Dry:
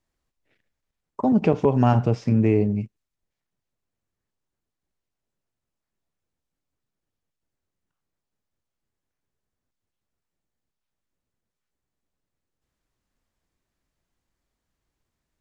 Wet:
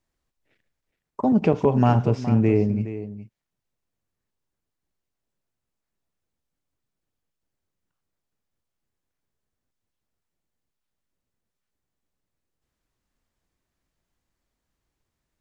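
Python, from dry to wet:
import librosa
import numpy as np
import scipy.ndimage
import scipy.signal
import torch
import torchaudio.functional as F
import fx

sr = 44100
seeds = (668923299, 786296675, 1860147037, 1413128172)

y = x + 10.0 ** (-13.0 / 20.0) * np.pad(x, (int(417 * sr / 1000.0), 0))[:len(x)]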